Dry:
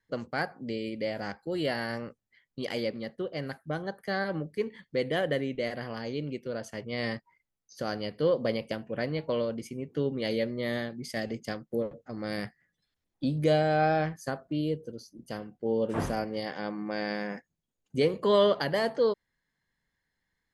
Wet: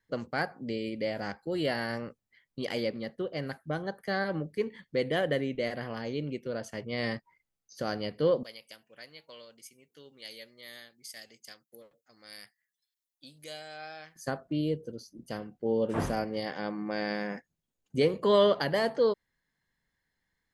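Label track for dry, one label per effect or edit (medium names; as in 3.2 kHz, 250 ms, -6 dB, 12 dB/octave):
5.810000	6.480000	band-stop 4.7 kHz
8.430000	14.160000	pre-emphasis filter coefficient 0.97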